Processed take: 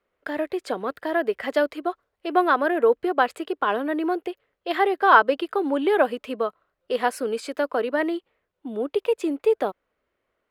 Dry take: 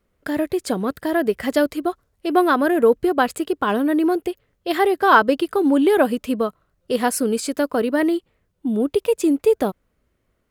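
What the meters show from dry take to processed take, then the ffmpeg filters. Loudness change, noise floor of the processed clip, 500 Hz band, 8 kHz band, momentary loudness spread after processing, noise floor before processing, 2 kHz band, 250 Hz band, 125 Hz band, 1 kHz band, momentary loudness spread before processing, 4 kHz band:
-3.5 dB, -79 dBFS, -3.5 dB, under -10 dB, 11 LU, -70 dBFS, -1.0 dB, -8.5 dB, n/a, -1.0 dB, 10 LU, -4.0 dB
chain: -filter_complex "[0:a]acrossover=split=360 3900:gain=0.141 1 0.2[a][b][c];[a][b][c]amix=inputs=3:normalize=0,volume=-1dB"

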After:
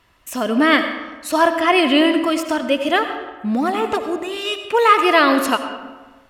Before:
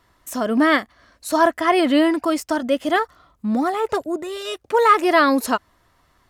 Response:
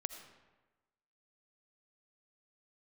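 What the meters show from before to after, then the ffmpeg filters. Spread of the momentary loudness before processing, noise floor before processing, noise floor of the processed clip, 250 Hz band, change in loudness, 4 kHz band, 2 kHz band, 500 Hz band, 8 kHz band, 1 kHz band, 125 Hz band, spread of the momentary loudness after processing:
13 LU, -61 dBFS, -51 dBFS, +1.5 dB, +2.0 dB, +7.0 dB, +4.0 dB, +1.5 dB, +1.0 dB, +1.5 dB, n/a, 12 LU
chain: -filter_complex "[0:a]equalizer=f=2.7k:t=o:w=0.49:g=10.5[a];[1:a]atrim=start_sample=2205,asetrate=40572,aresample=44100[b];[a][b]afir=irnorm=-1:irlink=0,volume=2dB"

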